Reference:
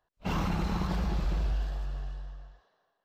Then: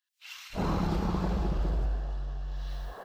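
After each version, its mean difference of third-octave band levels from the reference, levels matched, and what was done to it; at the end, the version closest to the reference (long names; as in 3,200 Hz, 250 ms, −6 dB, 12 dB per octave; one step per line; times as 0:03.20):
7.0 dB: camcorder AGC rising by 72 dB per second
dynamic equaliser 410 Hz, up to +5 dB, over −47 dBFS, Q 0.96
multiband delay without the direct sound highs, lows 330 ms, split 2,000 Hz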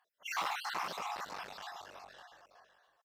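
11.0 dB: time-frequency cells dropped at random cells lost 56%
asymmetric clip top −40 dBFS, bottom −27.5 dBFS
high-pass filter 770 Hz 12 dB per octave
single-tap delay 557 ms −14 dB
level +7 dB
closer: first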